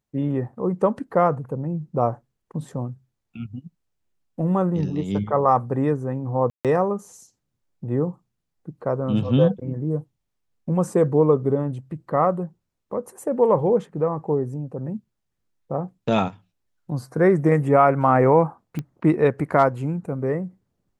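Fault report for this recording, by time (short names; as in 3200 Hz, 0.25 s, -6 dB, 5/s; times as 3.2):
6.5–6.65 gap 0.147 s
18.79 pop -17 dBFS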